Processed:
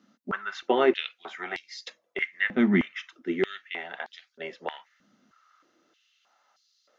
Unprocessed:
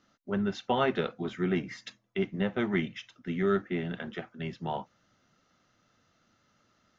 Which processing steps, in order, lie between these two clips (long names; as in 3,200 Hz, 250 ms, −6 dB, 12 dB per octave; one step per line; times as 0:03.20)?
dynamic equaliser 2,000 Hz, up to +6 dB, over −53 dBFS, Q 2.4
high-pass on a step sequencer 3.2 Hz 220–4,400 Hz